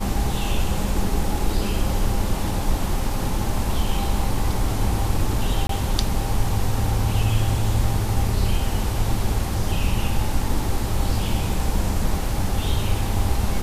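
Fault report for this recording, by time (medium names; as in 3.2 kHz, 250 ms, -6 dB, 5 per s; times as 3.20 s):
5.67–5.69 s: dropout 23 ms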